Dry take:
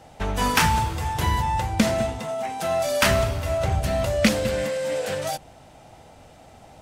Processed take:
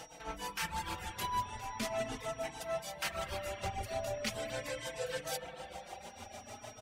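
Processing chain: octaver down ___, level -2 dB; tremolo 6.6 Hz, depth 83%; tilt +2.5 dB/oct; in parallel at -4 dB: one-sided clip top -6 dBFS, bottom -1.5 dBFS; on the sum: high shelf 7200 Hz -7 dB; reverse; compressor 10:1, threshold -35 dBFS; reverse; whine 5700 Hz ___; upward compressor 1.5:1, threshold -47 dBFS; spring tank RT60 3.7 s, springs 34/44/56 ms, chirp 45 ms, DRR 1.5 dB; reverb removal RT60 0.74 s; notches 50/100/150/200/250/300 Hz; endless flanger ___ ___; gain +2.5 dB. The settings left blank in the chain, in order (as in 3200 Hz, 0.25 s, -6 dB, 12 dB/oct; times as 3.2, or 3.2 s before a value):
2 oct, -57 dBFS, 4.1 ms, +0.41 Hz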